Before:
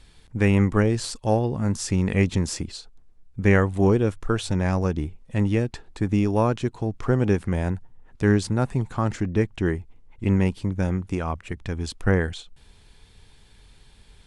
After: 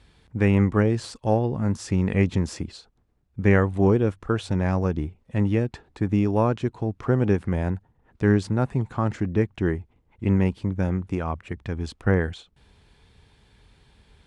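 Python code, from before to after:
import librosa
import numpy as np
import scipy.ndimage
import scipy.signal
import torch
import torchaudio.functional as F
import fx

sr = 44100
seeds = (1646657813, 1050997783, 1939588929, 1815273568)

y = scipy.signal.sosfilt(scipy.signal.butter(2, 51.0, 'highpass', fs=sr, output='sos'), x)
y = fx.high_shelf(y, sr, hz=4200.0, db=-11.0)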